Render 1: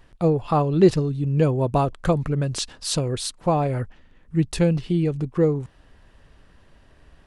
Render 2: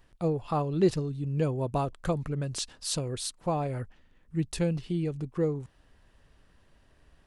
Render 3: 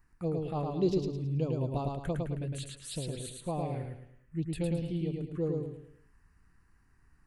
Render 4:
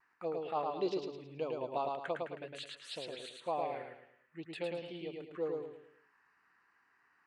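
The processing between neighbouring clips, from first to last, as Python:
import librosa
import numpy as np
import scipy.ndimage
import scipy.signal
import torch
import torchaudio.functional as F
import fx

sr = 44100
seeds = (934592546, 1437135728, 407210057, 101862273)

y1 = fx.high_shelf(x, sr, hz=5500.0, db=5.5)
y1 = F.gain(torch.from_numpy(y1), -8.5).numpy()
y2 = fx.env_phaser(y1, sr, low_hz=570.0, high_hz=1800.0, full_db=-23.5)
y2 = fx.echo_feedback(y2, sr, ms=108, feedback_pct=37, wet_db=-3.0)
y2 = F.gain(torch.from_numpy(y2), -4.5).numpy()
y3 = fx.bandpass_edges(y2, sr, low_hz=680.0, high_hz=3200.0)
y3 = fx.vibrato(y3, sr, rate_hz=0.46, depth_cents=18.0)
y3 = F.gain(torch.from_numpy(y3), 5.0).numpy()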